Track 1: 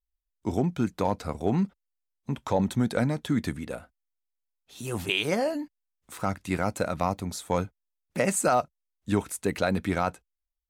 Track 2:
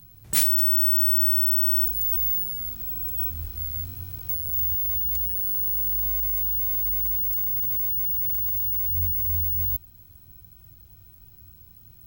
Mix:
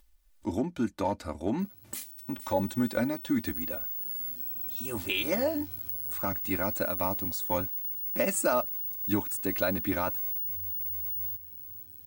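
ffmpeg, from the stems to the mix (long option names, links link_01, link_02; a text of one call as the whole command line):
ffmpeg -i stem1.wav -i stem2.wav -filter_complex "[0:a]volume=-5dB[link_01];[1:a]highpass=frequency=100:width=0.5412,highpass=frequency=100:width=1.3066,acompressor=threshold=-33dB:ratio=6,adelay=1600,volume=-4.5dB,asplit=2[link_02][link_03];[link_03]volume=-12.5dB,aecho=0:1:465|930|1395|1860|2325|2790:1|0.42|0.176|0.0741|0.0311|0.0131[link_04];[link_01][link_02][link_04]amix=inputs=3:normalize=0,acompressor=mode=upward:threshold=-48dB:ratio=2.5,aecho=1:1:3.4:0.76" out.wav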